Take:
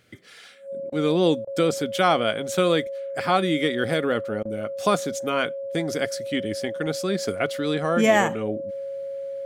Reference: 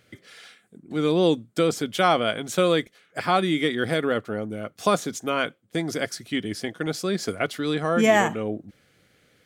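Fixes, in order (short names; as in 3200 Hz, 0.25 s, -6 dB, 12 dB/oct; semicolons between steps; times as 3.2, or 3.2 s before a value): notch 550 Hz, Q 30; interpolate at 0.9/1.45/4.43, 21 ms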